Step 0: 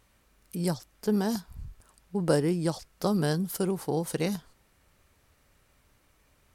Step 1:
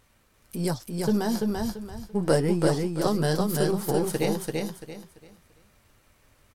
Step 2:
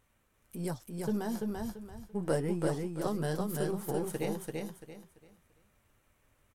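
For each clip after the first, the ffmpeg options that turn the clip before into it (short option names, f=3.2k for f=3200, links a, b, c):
-filter_complex "[0:a]aeval=exprs='if(lt(val(0),0),0.708*val(0),val(0))':c=same,flanger=delay=7.6:depth=1.9:regen=-42:speed=1.6:shape=triangular,asplit=2[a][b];[b]aecho=0:1:339|678|1017|1356:0.708|0.198|0.0555|0.0155[c];[a][c]amix=inputs=2:normalize=0,volume=7.5dB"
-af "equalizer=f=4.7k:w=2.3:g=-8,volume=-8.5dB"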